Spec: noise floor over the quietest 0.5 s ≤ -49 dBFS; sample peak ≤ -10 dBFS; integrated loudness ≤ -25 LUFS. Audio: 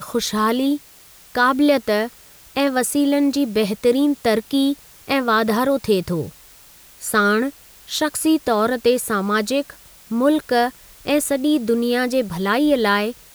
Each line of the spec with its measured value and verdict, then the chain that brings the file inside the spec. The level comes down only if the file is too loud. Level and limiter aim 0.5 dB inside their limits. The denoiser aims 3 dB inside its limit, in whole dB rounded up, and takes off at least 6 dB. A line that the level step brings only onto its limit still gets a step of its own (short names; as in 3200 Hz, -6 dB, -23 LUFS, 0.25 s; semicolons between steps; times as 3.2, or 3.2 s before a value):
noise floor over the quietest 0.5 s -47 dBFS: fail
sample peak -6.0 dBFS: fail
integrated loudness -19.5 LUFS: fail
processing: gain -6 dB